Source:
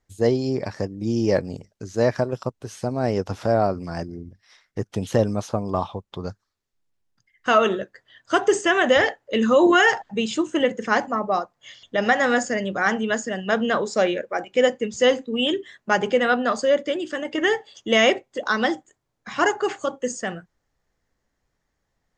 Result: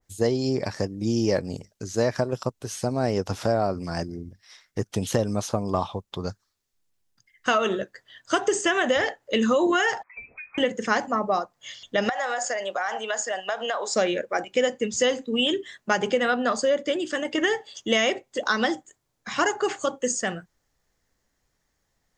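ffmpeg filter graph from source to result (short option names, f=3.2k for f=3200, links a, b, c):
-filter_complex "[0:a]asettb=1/sr,asplit=3[a][b][c];[a]atrim=end=10.034[d];[b]atrim=start=10.03:end=10.58,asetpts=PTS-STARTPTS,afade=t=in:d=0.004:c=qsin,afade=t=out:st=0.546:d=0.004:c=qsin,highpass=f=390:w=0.5412,highpass=f=390:w=1.3066,acompressor=threshold=-46dB:ratio=2.5:attack=3.2:release=140:knee=1:detection=peak,lowpass=f=2.4k:t=q:w=0.5098,lowpass=f=2.4k:t=q:w=0.6013,lowpass=f=2.4k:t=q:w=0.9,lowpass=f=2.4k:t=q:w=2.563,afreqshift=-2800[e];[c]atrim=start=10.576[f];[d][e]acrossfade=d=0.004:c1=hsin:c2=qsin[g];[g][f]acrossfade=d=0.004:c1=qsin:c2=hsin,asettb=1/sr,asplit=3[h][i][j];[h]atrim=end=12.094[k];[i]atrim=start=12.09:end=13.95,asetpts=PTS-STARTPTS,afade=t=in:d=0.004:c=qsin,afade=t=out:st=1.856:d=0.004:c=qsin,highpass=f=720:t=q:w=2.3,acompressor=threshold=-23dB:ratio=16:attack=3.2:release=140:knee=1:detection=peak[l];[j]atrim=start=13.946[m];[k][l]acrossfade=d=0.004:c1=hsin:c2=qsin[n];[n][m]acrossfade=d=0.004:c1=qsin:c2=hsin,highshelf=f=3.8k:g=9,acompressor=threshold=-18dB:ratio=6,adynamicequalizer=threshold=0.0224:dfrequency=1700:dqfactor=0.7:tfrequency=1700:tqfactor=0.7:attack=5:release=100:ratio=0.375:range=2:mode=cutabove:tftype=highshelf"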